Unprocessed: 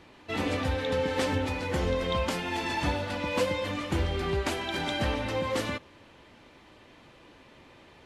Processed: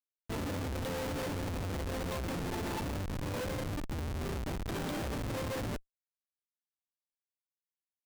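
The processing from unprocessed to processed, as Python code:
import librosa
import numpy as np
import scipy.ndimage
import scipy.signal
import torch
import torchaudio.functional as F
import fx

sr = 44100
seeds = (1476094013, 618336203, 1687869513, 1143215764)

y = fx.median_filter(x, sr, points=9, at=(2.81, 4.68))
y = fx.schmitt(y, sr, flips_db=-28.5)
y = y * librosa.db_to_amplitude(-4.5)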